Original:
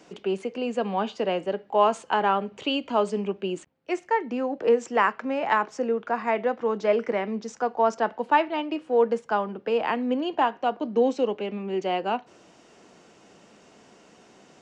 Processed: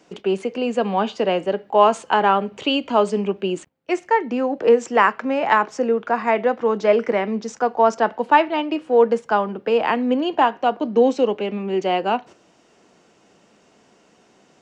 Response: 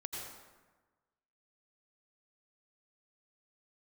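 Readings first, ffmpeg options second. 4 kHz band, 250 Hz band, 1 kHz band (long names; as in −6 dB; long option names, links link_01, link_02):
+6.0 dB, +6.0 dB, +6.0 dB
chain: -af "agate=range=-8dB:threshold=-44dB:ratio=16:detection=peak,volume=6dB"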